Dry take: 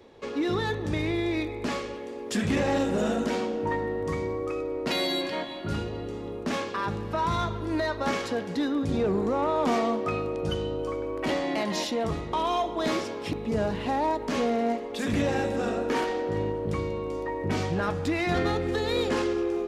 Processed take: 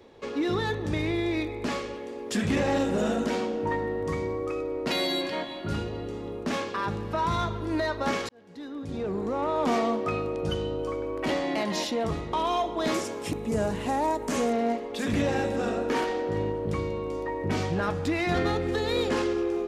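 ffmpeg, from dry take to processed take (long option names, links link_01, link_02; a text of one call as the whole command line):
ffmpeg -i in.wav -filter_complex "[0:a]asettb=1/sr,asplit=3[link_01][link_02][link_03];[link_01]atrim=end=12.944[link_04];[link_02]atrim=start=12.94:end=14.53,asetpts=PTS-STARTPTS,afade=type=in:duration=0.004:curve=qsin,afade=type=out:start_time=1.586:duration=0.004:curve=qsin,highshelf=frequency=5800:width_type=q:width=1.5:gain=8.5[link_05];[link_03]atrim=start=14.526[link_06];[link_04][link_05]acrossfade=duration=0.004:curve1=hsin:curve2=qsin[link_07];[link_07][link_06]acrossfade=duration=0.004:curve1=qsin:curve2=hsin,asplit=2[link_08][link_09];[link_08]atrim=end=8.29,asetpts=PTS-STARTPTS,afade=type=out:start_time=8.286:duration=0.004:curve=hsin[link_10];[link_09]atrim=start=8.29,asetpts=PTS-STARTPTS,afade=type=in:duration=1.46[link_11];[link_10][link_11]concat=n=2:v=0:a=1" out.wav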